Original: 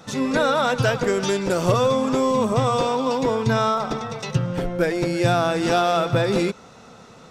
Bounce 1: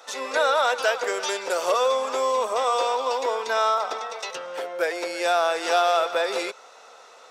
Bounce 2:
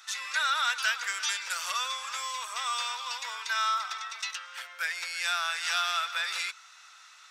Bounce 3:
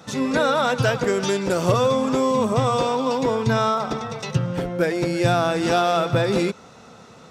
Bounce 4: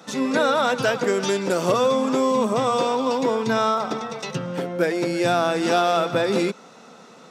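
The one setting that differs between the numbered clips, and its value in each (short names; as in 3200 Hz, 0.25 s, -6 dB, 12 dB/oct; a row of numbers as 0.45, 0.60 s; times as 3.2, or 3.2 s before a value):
HPF, cutoff: 500, 1400, 46, 180 Hz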